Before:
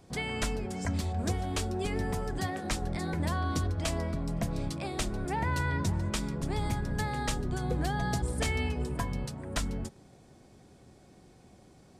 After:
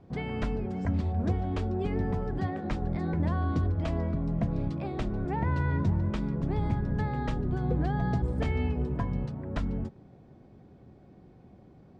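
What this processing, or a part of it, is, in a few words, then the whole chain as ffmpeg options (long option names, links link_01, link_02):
phone in a pocket: -af "lowpass=3800,equalizer=frequency=150:width_type=o:width=2.7:gain=4.5,highshelf=frequency=2100:gain=-11"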